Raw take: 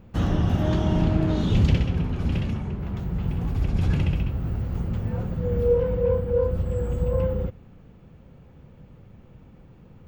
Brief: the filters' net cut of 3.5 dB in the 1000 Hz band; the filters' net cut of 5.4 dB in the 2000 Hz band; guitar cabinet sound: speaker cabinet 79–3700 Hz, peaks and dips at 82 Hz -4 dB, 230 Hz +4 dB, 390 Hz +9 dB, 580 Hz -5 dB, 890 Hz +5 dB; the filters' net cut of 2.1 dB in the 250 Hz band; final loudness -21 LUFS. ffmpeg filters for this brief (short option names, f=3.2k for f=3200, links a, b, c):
-af "highpass=79,equalizer=f=82:t=q:w=4:g=-4,equalizer=f=230:t=q:w=4:g=4,equalizer=f=390:t=q:w=4:g=9,equalizer=f=580:t=q:w=4:g=-5,equalizer=f=890:t=q:w=4:g=5,lowpass=f=3.7k:w=0.5412,lowpass=f=3.7k:w=1.3066,equalizer=f=250:t=o:g=-6,equalizer=f=1k:t=o:g=-6,equalizer=f=2k:t=o:g=-5.5,volume=7dB"